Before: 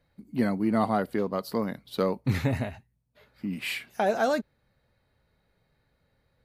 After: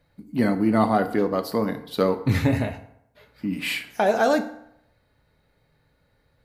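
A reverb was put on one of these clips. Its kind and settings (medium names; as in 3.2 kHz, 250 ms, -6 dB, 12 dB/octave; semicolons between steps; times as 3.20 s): FDN reverb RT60 0.77 s, low-frequency decay 0.85×, high-frequency decay 0.65×, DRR 7.5 dB; trim +4.5 dB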